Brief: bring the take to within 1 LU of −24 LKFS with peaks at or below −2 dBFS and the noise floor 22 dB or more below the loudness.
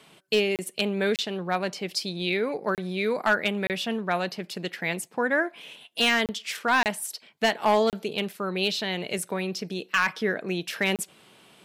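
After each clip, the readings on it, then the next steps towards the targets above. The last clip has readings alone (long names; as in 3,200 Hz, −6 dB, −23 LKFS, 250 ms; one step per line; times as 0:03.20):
share of clipped samples 0.3%; peaks flattened at −14.0 dBFS; number of dropouts 8; longest dropout 28 ms; integrated loudness −27.0 LKFS; sample peak −14.0 dBFS; target loudness −24.0 LKFS
→ clipped peaks rebuilt −14 dBFS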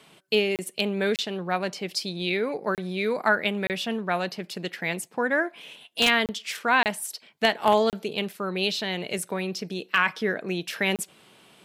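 share of clipped samples 0.0%; number of dropouts 8; longest dropout 28 ms
→ repair the gap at 0:00.56/0:01.16/0:02.75/0:03.67/0:06.26/0:06.83/0:07.90/0:10.96, 28 ms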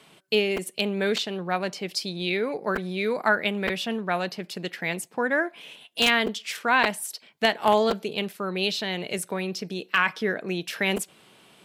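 number of dropouts 0; integrated loudness −26.0 LKFS; sample peak −5.0 dBFS; target loudness −24.0 LKFS
→ level +2 dB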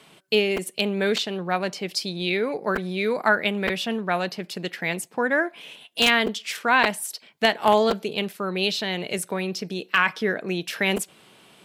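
integrated loudness −24.0 LKFS; sample peak −3.0 dBFS; background noise floor −54 dBFS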